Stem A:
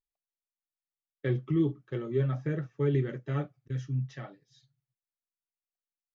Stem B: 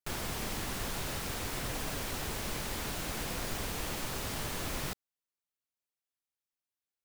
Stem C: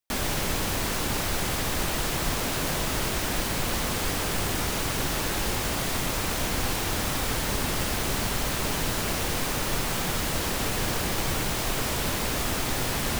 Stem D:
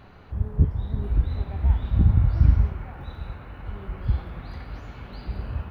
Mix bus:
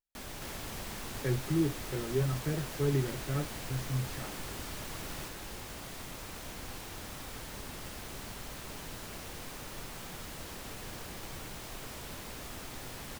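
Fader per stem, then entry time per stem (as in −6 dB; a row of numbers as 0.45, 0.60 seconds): −2.5 dB, −8.0 dB, −16.0 dB, muted; 0.00 s, 0.35 s, 0.05 s, muted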